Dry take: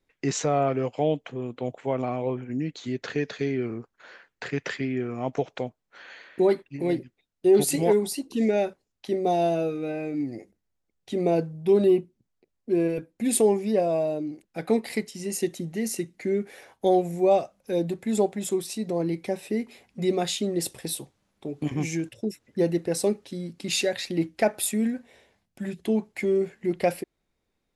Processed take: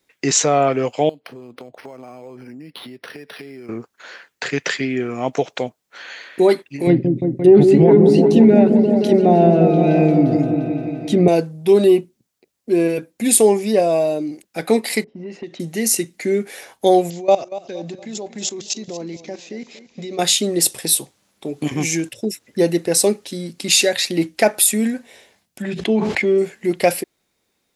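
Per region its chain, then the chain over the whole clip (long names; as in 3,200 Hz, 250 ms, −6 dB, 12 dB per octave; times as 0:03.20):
0:01.09–0:03.69: high-pass filter 110 Hz + downward compressor 16 to 1, threshold −39 dBFS + linearly interpolated sample-rate reduction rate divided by 6×
0:06.87–0:11.28: treble cut that deepens with the level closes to 1,600 Hz, closed at −20.5 dBFS + bass and treble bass +15 dB, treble −1 dB + echo whose low-pass opens from repeat to repeat 174 ms, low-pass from 400 Hz, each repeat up 1 octave, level −3 dB
0:15.04–0:15.60: high-frequency loss of the air 190 metres + low-pass that shuts in the quiet parts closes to 490 Hz, open at −21.5 dBFS + downward compressor, threshold −34 dBFS
0:17.10–0:20.19: output level in coarse steps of 18 dB + bad sample-rate conversion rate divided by 3×, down none, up filtered + feedback echo with a swinging delay time 234 ms, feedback 41%, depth 51 cents, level −15 dB
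0:25.62–0:26.38: low-pass filter 3,600 Hz + level that may fall only so fast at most 39 dB per second
whole clip: high-pass filter 190 Hz 6 dB per octave; high-shelf EQ 3,300 Hz +9 dB; boost into a limiter +9 dB; level −1 dB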